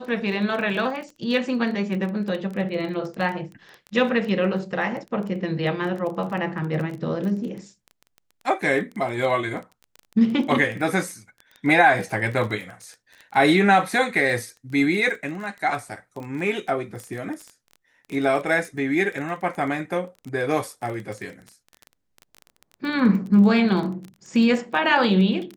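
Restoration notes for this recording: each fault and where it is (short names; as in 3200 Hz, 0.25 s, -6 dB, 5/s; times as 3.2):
crackle 17/s -30 dBFS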